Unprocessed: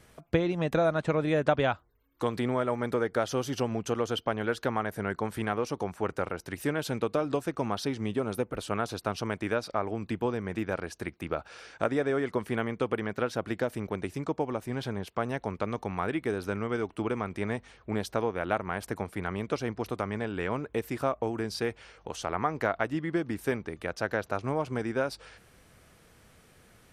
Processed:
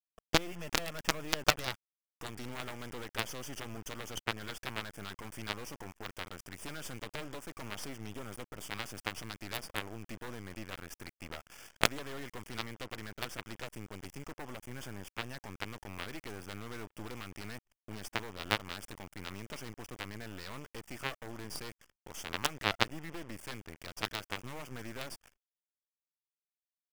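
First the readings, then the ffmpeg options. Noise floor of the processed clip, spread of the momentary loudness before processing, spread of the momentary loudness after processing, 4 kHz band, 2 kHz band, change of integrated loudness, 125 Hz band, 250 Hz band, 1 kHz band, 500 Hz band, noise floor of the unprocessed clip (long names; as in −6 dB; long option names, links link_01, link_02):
below −85 dBFS, 6 LU, 15 LU, +3.5 dB, −3.5 dB, −8.0 dB, −10.5 dB, −13.0 dB, −8.5 dB, −15.0 dB, −60 dBFS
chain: -af "highshelf=frequency=2100:gain=9.5,aresample=22050,aresample=44100,equalizer=frequency=430:width_type=o:width=0.46:gain=-4.5,acrusher=bits=4:dc=4:mix=0:aa=0.000001,asuperstop=centerf=4000:order=4:qfactor=3.1,anlmdn=0.0251,aeval=exprs='0.376*(cos(1*acos(clip(val(0)/0.376,-1,1)))-cos(1*PI/2))+0.168*(cos(3*acos(clip(val(0)/0.376,-1,1)))-cos(3*PI/2))+0.00944*(cos(6*acos(clip(val(0)/0.376,-1,1)))-cos(6*PI/2))':channel_layout=same,volume=3.5dB"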